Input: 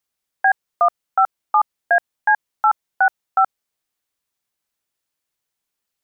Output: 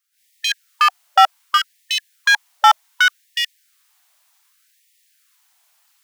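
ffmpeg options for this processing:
-af "lowshelf=f=480:g=7,alimiter=limit=-16dB:level=0:latency=1:release=26,volume=25.5dB,asoftclip=hard,volume=-25.5dB,dynaudnorm=f=110:g=3:m=15.5dB,afftfilt=real='re*gte(b*sr/1024,590*pow(1800/590,0.5+0.5*sin(2*PI*0.66*pts/sr)))':imag='im*gte(b*sr/1024,590*pow(1800/590,0.5+0.5*sin(2*PI*0.66*pts/sr)))':win_size=1024:overlap=0.75,volume=4dB"

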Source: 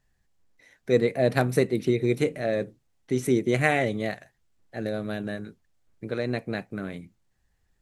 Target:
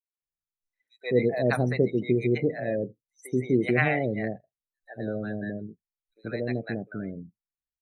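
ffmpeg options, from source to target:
-filter_complex "[0:a]afftdn=nr=32:nf=-35,acrossover=split=690|6000[a][b][c];[b]adelay=140[d];[a]adelay=220[e];[e][d][c]amix=inputs=3:normalize=0"

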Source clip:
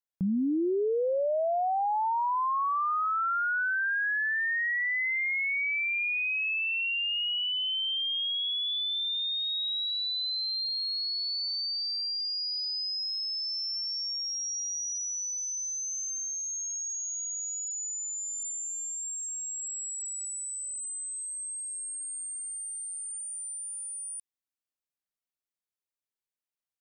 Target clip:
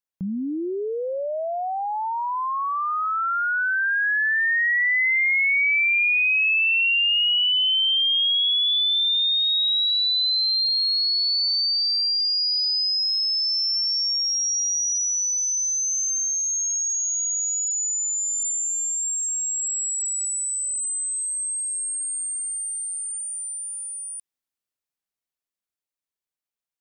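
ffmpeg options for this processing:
-af "dynaudnorm=f=370:g=21:m=10dB"

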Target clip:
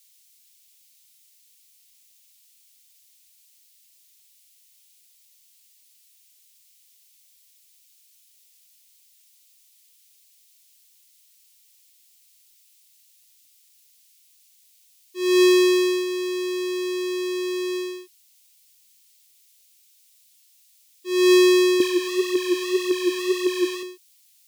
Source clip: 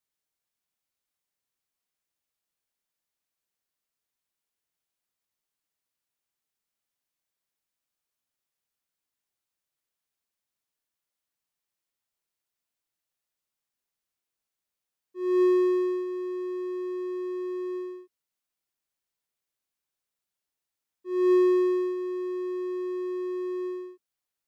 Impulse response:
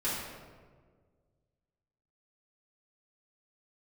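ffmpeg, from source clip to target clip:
-filter_complex "[0:a]aexciter=amount=6.9:drive=8.2:freq=2.1k,asettb=1/sr,asplit=3[a][b][c];[a]atrim=end=21.804[d];[b]atrim=start=21.8:end=23.83,asetpts=PTS-STARTPTS,afade=t=in:d=0.004:c=qsin,afade=t=out:st=2.026:d=0.004:c=qsin,aphaser=in_gain=1:out_gain=1:delay=4.7:decay=0.68:speed=1.8:type=triangular[e];[c]atrim=start=23.826[f];[d][e]acrossfade=d=0.004:c1=hsin:c2=qsin[g];[g][f]acrossfade=d=0.004:c1=qsin:c2=hsin,volume=5.5dB"

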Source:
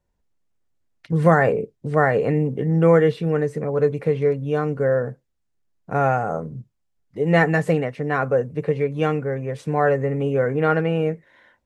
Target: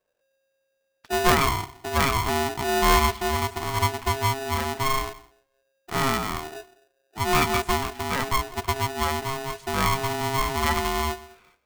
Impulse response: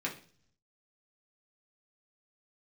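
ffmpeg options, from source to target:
-filter_complex "[0:a]asplit=2[a][b];[1:a]atrim=start_sample=2205,adelay=149[c];[b][c]afir=irnorm=-1:irlink=0,volume=-23.5dB[d];[a][d]amix=inputs=2:normalize=0,aeval=exprs='val(0)*sgn(sin(2*PI*540*n/s))':c=same,volume=-4.5dB"

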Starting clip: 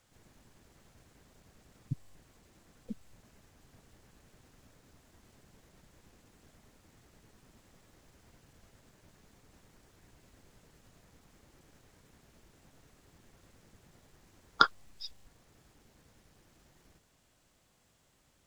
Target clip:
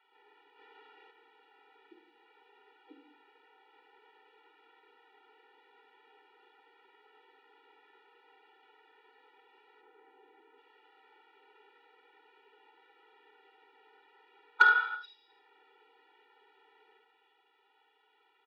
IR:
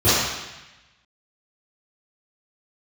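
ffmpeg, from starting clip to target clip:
-filter_complex "[0:a]aecho=1:1:52|73:0.224|0.2,volume=14.5dB,asoftclip=hard,volume=-14.5dB,asettb=1/sr,asplit=3[a][b][c];[a]atrim=end=14.864[d];[b]atrim=start=14.86:end=15.3,asetpts=PTS-STARTPTS,afade=t=in:d=0.004:c=qsin,afade=t=out:st=0.436:d=0.004:c=qsin,equalizer=f=1.3k:w=0.3:g=-5.5[e];[c]atrim=start=15.296[f];[d][e]acrossfade=d=0.004:c1=hsin:c2=qsin[g];[g][f]acrossfade=d=0.004:c1=qsin:c2=hsin,asplit=2[h][i];[1:a]atrim=start_sample=2205,afade=t=out:st=0.39:d=0.01,atrim=end_sample=17640[j];[i][j]afir=irnorm=-1:irlink=0,volume=-25.5dB[k];[h][k]amix=inputs=2:normalize=0,asettb=1/sr,asplit=3[l][m][n];[l]atrim=end=0.584[o];[m]atrim=start=0.58:end=1.11,asetpts=PTS-STARTPTS,afade=t=in:d=0.004:c=qsin,afade=t=out:st=0.526:d=0.004:c=qsin,acontrast=30[p];[n]atrim=start=1.106[q];[o][p]acrossfade=d=0.004:c1=hsin:c2=qsin[r];[r][q]acrossfade=d=0.004:c1=qsin:c2=hsin,asettb=1/sr,asplit=3[s][t][u];[s]atrim=end=9.814[v];[t]atrim=start=9.81:end=10.58,asetpts=PTS-STARTPTS,afade=t=in:d=0.004:c=qsin,afade=t=out:st=0.766:d=0.004:c=qsin,aemphasis=mode=reproduction:type=riaa[w];[u]atrim=start=10.576[x];[v][w]acrossfade=d=0.004:c1=hsin:c2=qsin[y];[y][x]acrossfade=d=0.004:c1=qsin:c2=hsin,highpass=f=450:t=q:w=0.5412,highpass=f=450:t=q:w=1.307,lowpass=f=3.2k:t=q:w=0.5176,lowpass=f=3.2k:t=q:w=0.7071,lowpass=f=3.2k:t=q:w=1.932,afreqshift=66,asoftclip=type=tanh:threshold=-12.5dB,afftfilt=real='re*eq(mod(floor(b*sr/1024/250),2),1)':imag='im*eq(mod(floor(b*sr/1024/250),2),1)':win_size=1024:overlap=0.75,volume=6.5dB"

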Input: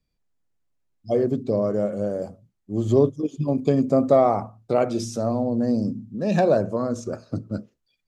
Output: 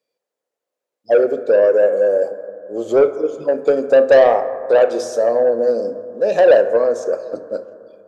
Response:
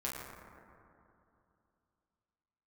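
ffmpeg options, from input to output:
-filter_complex "[0:a]highpass=f=500:t=q:w=4.9,acontrast=69,asplit=2[a][b];[1:a]atrim=start_sample=2205,adelay=26[c];[b][c]afir=irnorm=-1:irlink=0,volume=-13dB[d];[a][d]amix=inputs=2:normalize=0,volume=-4.5dB"

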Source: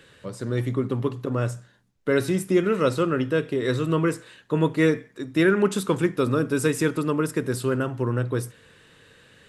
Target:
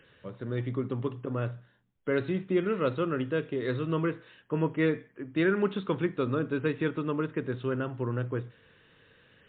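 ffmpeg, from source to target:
-af "volume=-6dB" -ar 8000 -c:a libmp3lame -b:a 64k

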